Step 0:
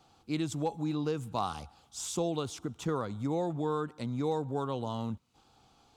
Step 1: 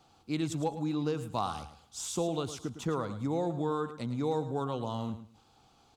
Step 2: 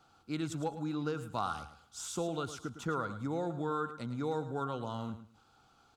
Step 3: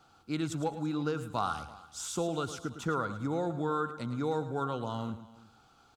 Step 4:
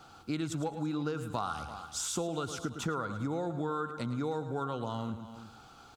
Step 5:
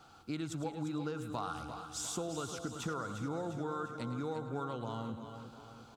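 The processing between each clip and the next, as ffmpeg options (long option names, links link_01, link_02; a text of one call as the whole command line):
ffmpeg -i in.wav -af "aecho=1:1:108|216|324:0.251|0.0527|0.0111" out.wav
ffmpeg -i in.wav -af "equalizer=frequency=1400:width_type=o:width=0.28:gain=13.5,volume=-4dB" out.wav
ffmpeg -i in.wav -af "aecho=1:1:334:0.0891,volume=3dB" out.wav
ffmpeg -i in.wav -af "acompressor=threshold=-42dB:ratio=3,volume=8dB" out.wav
ffmpeg -i in.wav -af "aecho=1:1:350|700|1050|1400|1750|2100:0.316|0.168|0.0888|0.0471|0.025|0.0132,volume=-4.5dB" out.wav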